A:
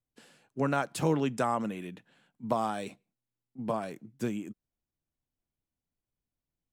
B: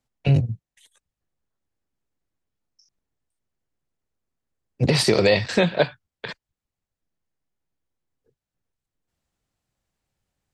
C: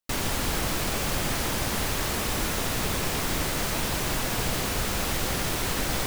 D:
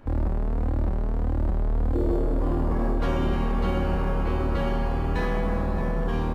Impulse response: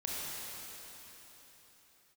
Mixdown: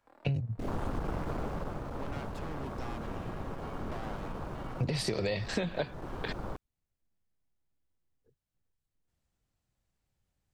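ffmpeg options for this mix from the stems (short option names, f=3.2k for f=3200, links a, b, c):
-filter_complex "[0:a]asoftclip=type=tanh:threshold=-30.5dB,lowpass=3.7k,aeval=exprs='max(val(0),0)':c=same,adelay=1400,volume=-4dB[a];[1:a]lowshelf=f=150:g=7.5,volume=-5dB[b];[2:a]lowpass=f=2.4k:p=1,afwtdn=0.0316,aeval=exprs='clip(val(0),-1,0.0299)':c=same,adelay=500,volume=-1.5dB,afade=t=out:st=1.13:d=0.64:silence=0.398107,asplit=2[c][d];[d]volume=-11.5dB[e];[3:a]highpass=740,volume=-19.5dB,asplit=2[f][g];[g]volume=-10dB[h];[4:a]atrim=start_sample=2205[i];[e][h]amix=inputs=2:normalize=0[j];[j][i]afir=irnorm=-1:irlink=0[k];[a][b][c][f][k]amix=inputs=5:normalize=0,acompressor=threshold=-29dB:ratio=6"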